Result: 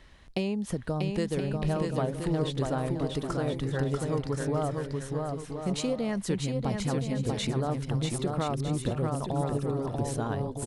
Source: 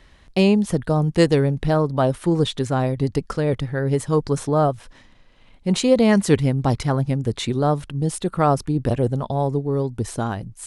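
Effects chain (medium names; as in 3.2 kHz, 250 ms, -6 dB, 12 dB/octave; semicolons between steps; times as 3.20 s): compression, threshold -24 dBFS, peak gain reduction 13.5 dB; on a send: bouncing-ball echo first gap 640 ms, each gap 0.6×, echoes 5; on the sum: trim -3.5 dB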